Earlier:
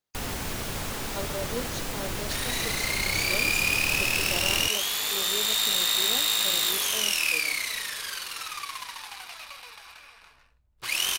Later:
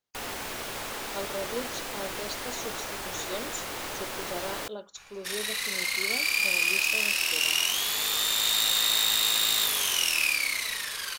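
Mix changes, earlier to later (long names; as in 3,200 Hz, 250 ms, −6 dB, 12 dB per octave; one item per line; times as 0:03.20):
first sound: add bass and treble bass −14 dB, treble −3 dB
second sound: entry +2.95 s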